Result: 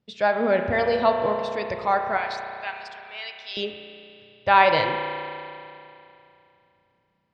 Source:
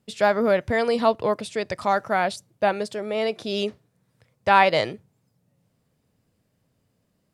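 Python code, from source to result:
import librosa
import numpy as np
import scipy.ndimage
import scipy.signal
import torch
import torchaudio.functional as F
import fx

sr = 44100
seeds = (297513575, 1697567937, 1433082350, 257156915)

y = fx.highpass(x, sr, hz=1500.0, slope=12, at=(2.17, 3.57))
y = fx.noise_reduce_blind(y, sr, reduce_db=6)
y = scipy.signal.sosfilt(scipy.signal.butter(4, 5100.0, 'lowpass', fs=sr, output='sos'), y)
y = fx.rev_spring(y, sr, rt60_s=2.8, pass_ms=(33,), chirp_ms=40, drr_db=4.5)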